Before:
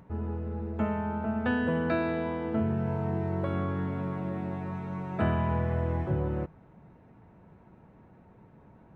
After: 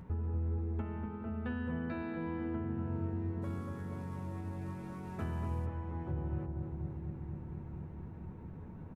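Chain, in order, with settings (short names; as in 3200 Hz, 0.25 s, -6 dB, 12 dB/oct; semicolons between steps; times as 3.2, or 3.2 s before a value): 3.42–5.66 CVSD 64 kbps; bell 640 Hz -5.5 dB 0.36 oct; compressor 5:1, threshold -42 dBFS, peak gain reduction 16.5 dB; low shelf 100 Hz +12 dB; doubler 12 ms -12 dB; darkening echo 0.24 s, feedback 84%, low-pass 900 Hz, level -3 dB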